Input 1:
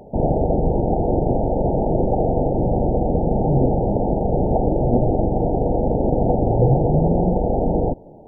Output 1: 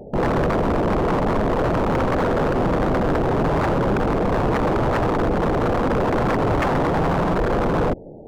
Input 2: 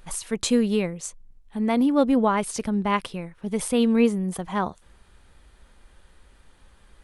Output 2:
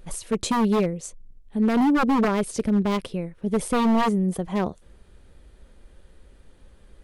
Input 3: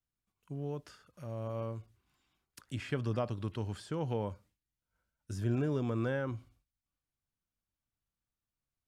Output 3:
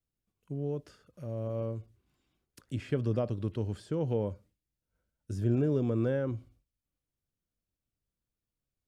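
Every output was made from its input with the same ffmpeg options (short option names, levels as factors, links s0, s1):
-af "lowshelf=f=680:t=q:w=1.5:g=6.5,aeval=exprs='0.266*(abs(mod(val(0)/0.266+3,4)-2)-1)':c=same,volume=0.708"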